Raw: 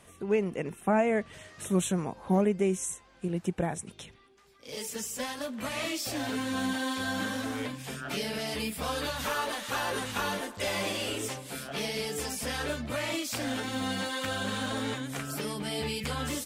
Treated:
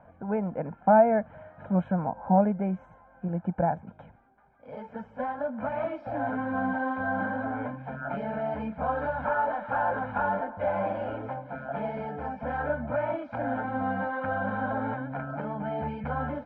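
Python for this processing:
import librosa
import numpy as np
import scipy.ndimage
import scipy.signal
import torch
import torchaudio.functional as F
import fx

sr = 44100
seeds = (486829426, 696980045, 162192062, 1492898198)

y = scipy.signal.sosfilt(scipy.signal.butter(4, 1300.0, 'lowpass', fs=sr, output='sos'), x)
y = fx.low_shelf(y, sr, hz=170.0, db=-11.0)
y = y + 0.84 * np.pad(y, (int(1.3 * sr / 1000.0), 0))[:len(y)]
y = F.gain(torch.from_numpy(y), 5.0).numpy()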